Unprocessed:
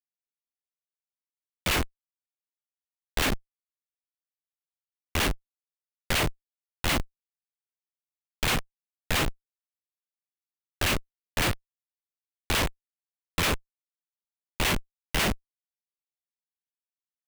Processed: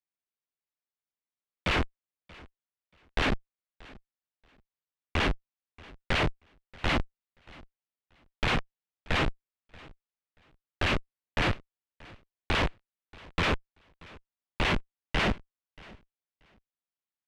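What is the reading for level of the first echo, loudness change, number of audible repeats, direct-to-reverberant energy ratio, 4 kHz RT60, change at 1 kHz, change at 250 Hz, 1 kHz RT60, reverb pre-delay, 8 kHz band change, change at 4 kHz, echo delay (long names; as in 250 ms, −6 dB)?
−23.0 dB, −2.0 dB, 1, no reverb audible, no reverb audible, 0.0 dB, 0.0 dB, no reverb audible, no reverb audible, −15.0 dB, −3.5 dB, 632 ms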